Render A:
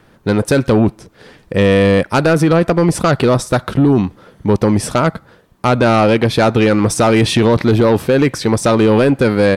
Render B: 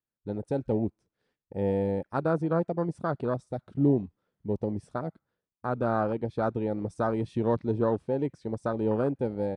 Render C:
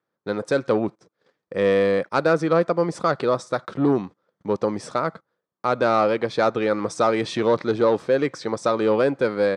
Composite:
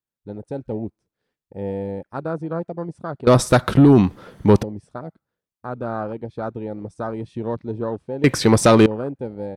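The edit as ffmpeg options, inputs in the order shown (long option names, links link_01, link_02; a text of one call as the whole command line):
ffmpeg -i take0.wav -i take1.wav -filter_complex "[0:a]asplit=2[link_01][link_02];[1:a]asplit=3[link_03][link_04][link_05];[link_03]atrim=end=3.272[link_06];[link_01]atrim=start=3.268:end=4.632[link_07];[link_04]atrim=start=4.628:end=8.242[link_08];[link_02]atrim=start=8.238:end=8.862[link_09];[link_05]atrim=start=8.858[link_10];[link_06][link_07]acrossfade=duration=0.004:curve1=hsin:curve2=hsin[link_11];[link_11][link_08]acrossfade=duration=0.004:curve1=hsin:curve2=hsin[link_12];[link_12][link_09]acrossfade=duration=0.004:curve1=hsin:curve2=hsin[link_13];[link_13][link_10]acrossfade=duration=0.004:curve1=hsin:curve2=hsin" out.wav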